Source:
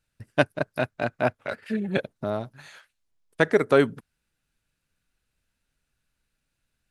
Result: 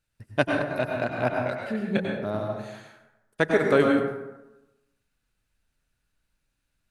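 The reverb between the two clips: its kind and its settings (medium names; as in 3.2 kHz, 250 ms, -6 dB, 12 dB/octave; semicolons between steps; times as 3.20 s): plate-style reverb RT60 1 s, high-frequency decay 0.5×, pre-delay 85 ms, DRR 0.5 dB; trim -2.5 dB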